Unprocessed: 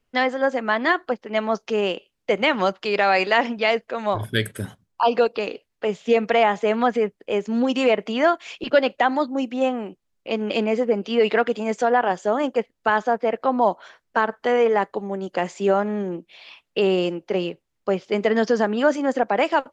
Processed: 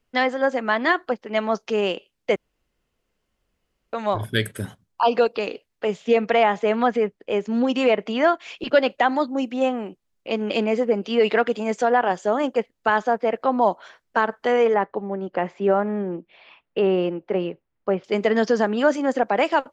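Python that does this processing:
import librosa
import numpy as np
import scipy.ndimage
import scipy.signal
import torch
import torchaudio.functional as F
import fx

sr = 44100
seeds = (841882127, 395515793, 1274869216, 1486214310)

y = fx.high_shelf(x, sr, hz=8600.0, db=-11.0, at=(6.04, 8.58))
y = fx.lowpass(y, sr, hz=2100.0, slope=12, at=(14.74, 18.04))
y = fx.edit(y, sr, fx.room_tone_fill(start_s=2.36, length_s=1.57), tone=tone)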